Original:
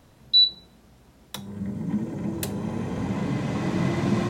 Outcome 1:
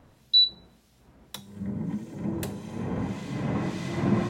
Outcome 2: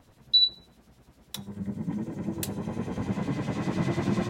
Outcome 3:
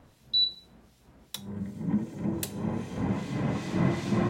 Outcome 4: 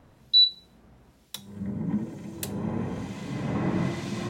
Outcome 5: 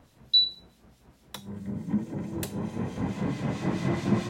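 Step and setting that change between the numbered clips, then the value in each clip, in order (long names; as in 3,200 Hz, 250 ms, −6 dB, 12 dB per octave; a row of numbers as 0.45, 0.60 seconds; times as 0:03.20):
two-band tremolo in antiphase, speed: 1.7, 10, 2.6, 1.1, 4.6 Hertz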